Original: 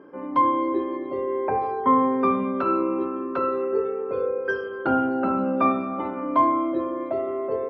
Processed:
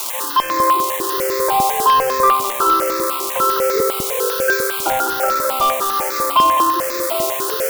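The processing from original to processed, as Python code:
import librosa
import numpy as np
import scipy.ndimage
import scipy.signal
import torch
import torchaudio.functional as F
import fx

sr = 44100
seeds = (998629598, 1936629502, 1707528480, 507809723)

p1 = x + 0.5 * 10.0 ** (-14.5 / 20.0) * np.diff(np.sign(x), prepend=np.sign(x[:1]))
p2 = scipy.signal.sosfilt(scipy.signal.butter(8, 350.0, 'highpass', fs=sr, output='sos'), p1)
p3 = fx.peak_eq(p2, sr, hz=1100.0, db=5.0, octaves=1.3)
p4 = np.clip(p3, -10.0 ** (-16.0 / 20.0), 10.0 ** (-16.0 / 20.0))
p5 = p4 + fx.echo_single(p4, sr, ms=208, db=-6.5, dry=0)
p6 = fx.phaser_held(p5, sr, hz=10.0, low_hz=460.0, high_hz=3000.0)
y = p6 * 10.0 ** (8.0 / 20.0)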